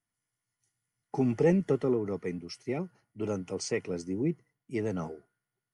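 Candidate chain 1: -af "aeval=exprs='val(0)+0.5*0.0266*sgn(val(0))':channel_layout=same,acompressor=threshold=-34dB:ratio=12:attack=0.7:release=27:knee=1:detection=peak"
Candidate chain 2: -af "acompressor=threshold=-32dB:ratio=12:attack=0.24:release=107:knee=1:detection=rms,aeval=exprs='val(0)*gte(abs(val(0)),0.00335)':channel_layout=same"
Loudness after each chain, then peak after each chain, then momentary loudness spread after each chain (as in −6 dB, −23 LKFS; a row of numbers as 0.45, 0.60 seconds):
−36.5, −41.0 LKFS; −29.0, −30.0 dBFS; 2, 6 LU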